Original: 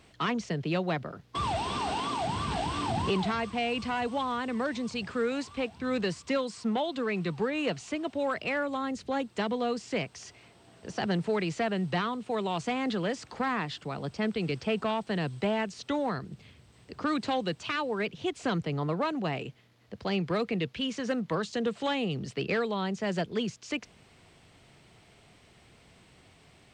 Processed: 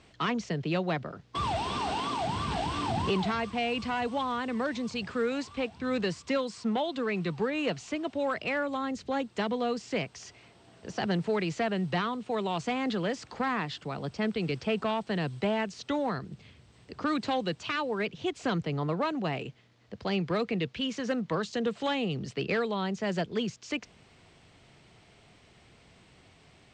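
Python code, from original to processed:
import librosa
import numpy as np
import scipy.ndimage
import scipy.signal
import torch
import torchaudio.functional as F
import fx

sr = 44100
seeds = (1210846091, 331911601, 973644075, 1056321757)

y = scipy.signal.sosfilt(scipy.signal.butter(4, 8100.0, 'lowpass', fs=sr, output='sos'), x)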